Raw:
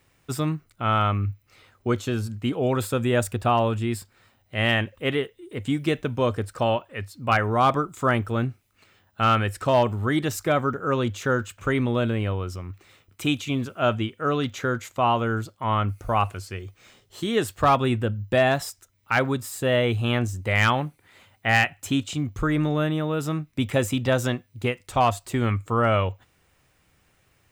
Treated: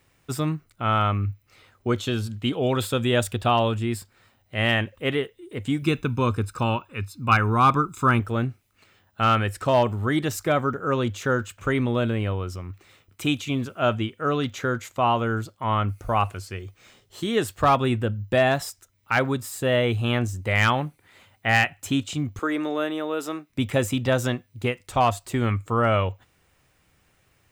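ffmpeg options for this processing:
-filter_complex "[0:a]asettb=1/sr,asplit=3[a][b][c];[a]atrim=end=1.984[d];[b]atrim=start=1.98:end=3.72,asetpts=PTS-STARTPTS,afade=t=in:d=0.004:c=qsin,afade=t=out:st=1.736:d=0.004:c=qsin,equalizer=f=3.4k:w=2.2:g=8.5[e];[c]atrim=start=3.716[f];[d][e]acrossfade=d=0.004:c1=hsin:c2=qsin[g];[g][f]acrossfade=d=0.004:c1=qsin:c2=hsin,asettb=1/sr,asplit=3[h][i][j];[h]atrim=end=5.824[k];[i]atrim=start=5.82:end=8.2,asetpts=PTS-STARTPTS,afade=t=in:d=0.004:c=qsin,afade=t=out:st=2.376:d=0.004:c=qsin,aecho=1:1:0.8:0.65,atrim=end_sample=104958[l];[j]atrim=start=8.196[m];[k][l]acrossfade=d=0.004:c1=hsin:c2=qsin[n];[n][m]acrossfade=d=0.004:c1=qsin:c2=hsin,asettb=1/sr,asplit=3[o][p][q];[o]atrim=end=22.394[r];[p]atrim=start=22.39:end=23.5,asetpts=PTS-STARTPTS,afade=t=in:d=0.004:c=qsin,afade=t=out:st=1.106:d=0.004:c=qsin,highpass=f=280:w=0.5412,highpass=f=280:w=1.3066[s];[q]atrim=start=23.496[t];[r][s]acrossfade=d=0.004:c1=hsin:c2=qsin[u];[u][t]acrossfade=d=0.004:c1=qsin:c2=hsin"

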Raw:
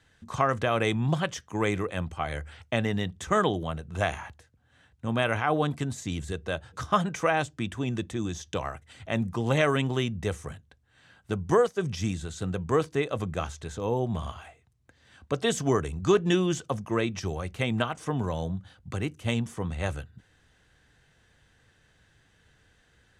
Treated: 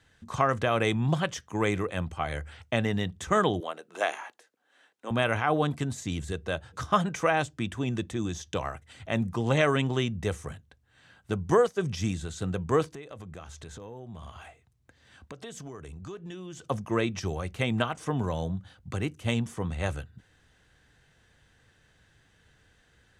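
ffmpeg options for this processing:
-filter_complex "[0:a]asettb=1/sr,asplit=3[a][b][c];[a]atrim=end=3.604[d];[b]atrim=start=3.6:end=5.11,asetpts=PTS-STARTPTS,afade=t=in:d=0.004:c=qsin,afade=t=out:st=1.506:d=0.004:c=qsin,highpass=f=320:w=0.5412,highpass=f=320:w=1.3066[e];[c]atrim=start=5.106[f];[d][e]acrossfade=d=0.004:c1=hsin:c2=qsin[g];[g][f]acrossfade=d=0.004:c1=qsin:c2=hsin,asettb=1/sr,asplit=3[h][i][j];[h]atrim=end=9.434[k];[i]atrim=start=9.43:end=10.09,asetpts=PTS-STARTPTS,afade=t=in:d=0.004:c=qsin,afade=t=out:st=0.656:d=0.004:c=qsin,lowpass=f=9.7k:w=0.5412,lowpass=f=9.7k:w=1.3066[l];[j]atrim=start=10.086[m];[k][l]acrossfade=d=0.004:c1=hsin:c2=qsin[n];[n][m]acrossfade=d=0.004:c1=qsin:c2=hsin,asettb=1/sr,asplit=3[o][p][q];[o]atrim=end=12.924[r];[p]atrim=start=12.92:end=16.65,asetpts=PTS-STARTPTS,afade=t=in:d=0.004:c=qsin,afade=t=out:st=3.726:d=0.004:c=qsin,acompressor=threshold=-40dB:ratio=5:attack=3.2:release=140:knee=1:detection=peak[s];[q]atrim=start=16.646[t];[r][s]acrossfade=d=0.004:c1=hsin:c2=qsin[u];[u][t]acrossfade=d=0.004:c1=qsin:c2=hsin"

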